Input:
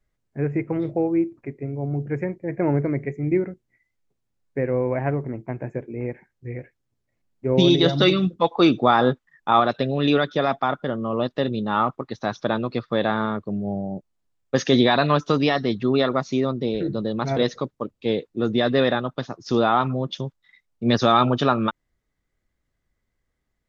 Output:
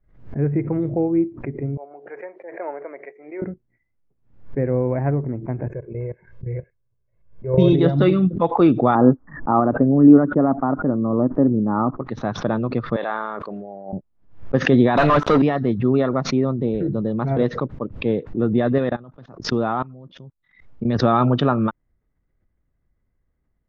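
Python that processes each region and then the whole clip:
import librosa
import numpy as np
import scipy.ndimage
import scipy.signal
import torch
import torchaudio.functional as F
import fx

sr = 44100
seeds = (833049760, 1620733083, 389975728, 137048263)

y = fx.chain(x, sr, fx.highpass(hz=570.0, slope=24),
    fx.air_absorb(metres=97.0), at=(1.77, 3.42))
y = fx.chain(y, sr, fx.comb(ms=1.9, depth=0.93),
    fx.level_steps(step_db=15), at=(5.66, 7.73))
y = fx.chain(y, sr, fx.lowpass(hz=1300.0, slope=24),
    fx.peak_eq(hz=280.0, db=10.0, octaves=0.45), at=(8.95, 12.0))
y = fx.chain(y, sr, fx.highpass(hz=690.0, slope=12),
    fx.high_shelf(hz=5800.0, db=7.0),
    fx.sustainer(db_per_s=24.0), at=(12.96, 13.93))
y = fx.chain(y, sr, fx.highpass(hz=910.0, slope=6),
    fx.leveller(passes=5), at=(14.97, 15.42))
y = fx.chain(y, sr, fx.high_shelf(hz=4500.0, db=6.0),
    fx.level_steps(step_db=22), at=(18.78, 20.96))
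y = scipy.signal.sosfilt(scipy.signal.butter(2, 1700.0, 'lowpass', fs=sr, output='sos'), y)
y = fx.low_shelf(y, sr, hz=300.0, db=8.0)
y = fx.pre_swell(y, sr, db_per_s=120.0)
y = y * 10.0 ** (-1.5 / 20.0)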